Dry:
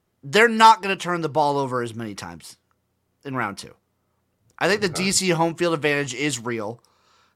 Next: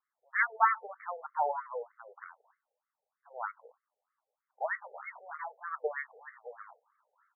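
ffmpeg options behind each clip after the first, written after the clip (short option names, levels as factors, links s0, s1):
-af "aeval=exprs='if(lt(val(0),0),0.447*val(0),val(0))':c=same,afftfilt=real='re*between(b*sr/1024,590*pow(1600/590,0.5+0.5*sin(2*PI*3.2*pts/sr))/1.41,590*pow(1600/590,0.5+0.5*sin(2*PI*3.2*pts/sr))*1.41)':imag='im*between(b*sr/1024,590*pow(1600/590,0.5+0.5*sin(2*PI*3.2*pts/sr))/1.41,590*pow(1600/590,0.5+0.5*sin(2*PI*3.2*pts/sr))*1.41)':win_size=1024:overlap=0.75,volume=0.531"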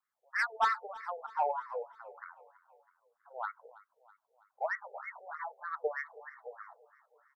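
-filter_complex "[0:a]acrossover=split=710[s0][s1];[s1]asoftclip=type=tanh:threshold=0.0631[s2];[s0][s2]amix=inputs=2:normalize=0,aecho=1:1:326|652|978|1304:0.1|0.055|0.0303|0.0166"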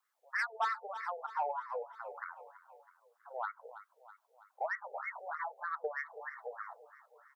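-af "acompressor=threshold=0.00562:ratio=2,highpass=400,volume=2"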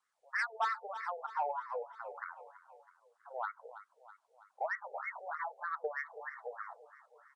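-af "aresample=22050,aresample=44100"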